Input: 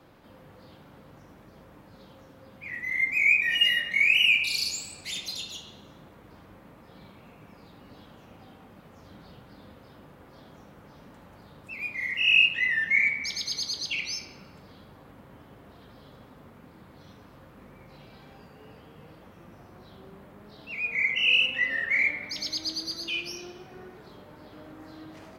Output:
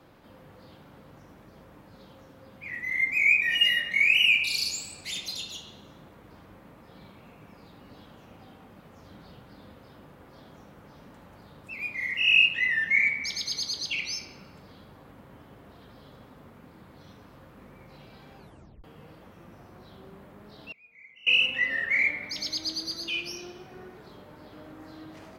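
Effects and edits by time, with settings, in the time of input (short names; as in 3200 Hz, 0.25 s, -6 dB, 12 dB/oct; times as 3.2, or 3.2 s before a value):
18.38 tape stop 0.46 s
20.71–21.27 flipped gate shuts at -33 dBFS, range -26 dB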